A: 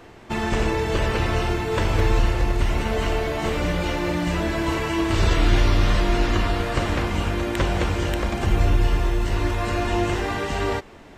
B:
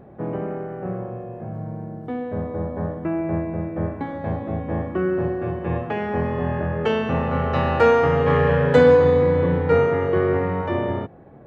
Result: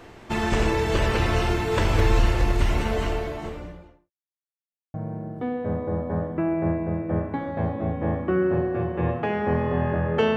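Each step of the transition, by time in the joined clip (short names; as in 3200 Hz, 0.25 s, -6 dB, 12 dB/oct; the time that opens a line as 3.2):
A
2.59–4.11 studio fade out
4.11–4.94 mute
4.94 switch to B from 1.61 s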